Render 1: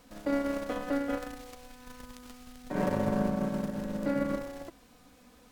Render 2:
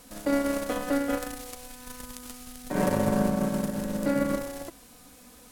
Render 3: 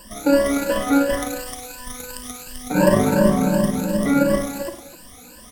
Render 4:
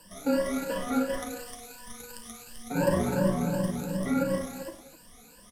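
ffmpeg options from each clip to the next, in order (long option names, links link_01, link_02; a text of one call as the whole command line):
ffmpeg -i in.wav -af "equalizer=frequency=11000:width=0.57:gain=12,volume=4dB" out.wav
ffmpeg -i in.wav -filter_complex "[0:a]afftfilt=real='re*pow(10,22/40*sin(2*PI*(1.3*log(max(b,1)*sr/1024/100)/log(2)-(2.8)*(pts-256)/sr)))':imag='im*pow(10,22/40*sin(2*PI*(1.3*log(max(b,1)*sr/1024/100)/log(2)-(2.8)*(pts-256)/sr)))':win_size=1024:overlap=0.75,asplit=2[link_01][link_02];[link_02]aecho=0:1:54|102|253:0.335|0.237|0.178[link_03];[link_01][link_03]amix=inputs=2:normalize=0,volume=3dB" out.wav
ffmpeg -i in.wav -af "flanger=delay=8:depth=7.3:regen=-44:speed=1.4:shape=triangular,afreqshift=-19,aresample=32000,aresample=44100,volume=-6dB" out.wav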